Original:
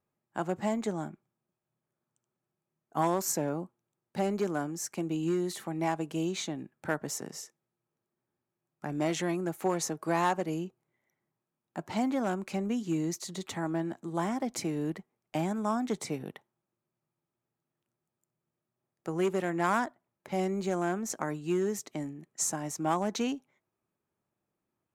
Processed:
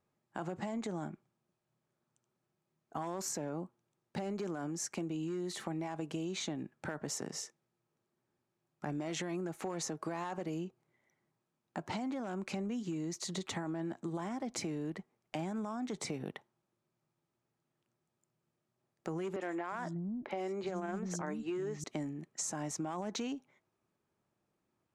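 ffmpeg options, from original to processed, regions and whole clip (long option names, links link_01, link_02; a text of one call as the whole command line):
ffmpeg -i in.wav -filter_complex "[0:a]asettb=1/sr,asplit=3[link_01][link_02][link_03];[link_01]atrim=end=19.364[link_04];[link_02]atrim=start=19.36:end=21.84,asetpts=PTS-STARTPTS,afade=type=in:duration=0.004:curve=qsin,afade=type=out:start_time=2.476:duration=0.004:curve=qsin,highshelf=frequency=9400:gain=-11.5,acrossover=split=240|4300[link_05][link_06][link_07];[link_07]adelay=50[link_08];[link_05]adelay=360[link_09];[link_09][link_06][link_08]amix=inputs=3:normalize=0,atrim=end_sample=109368[link_10];[link_03]atrim=start=21.836[link_11];[link_04][link_10]acrossfade=duration=0.004:curve1=hsin:curve2=qsin[link_12];[link_12][link_11]acrossfade=duration=0.004:curve1=qsin:curve2=hsin,lowpass=8000,alimiter=level_in=3dB:limit=-24dB:level=0:latency=1:release=29,volume=-3dB,acompressor=threshold=-38dB:ratio=6,volume=3dB" out.wav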